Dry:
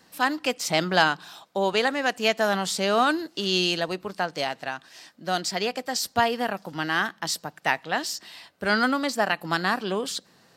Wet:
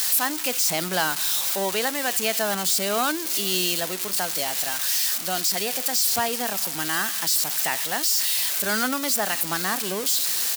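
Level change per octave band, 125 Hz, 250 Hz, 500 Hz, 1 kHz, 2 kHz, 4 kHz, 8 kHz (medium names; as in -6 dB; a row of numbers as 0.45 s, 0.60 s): -3.5 dB, -3.0 dB, -3.0 dB, -3.0 dB, -2.0 dB, +3.0 dB, +12.5 dB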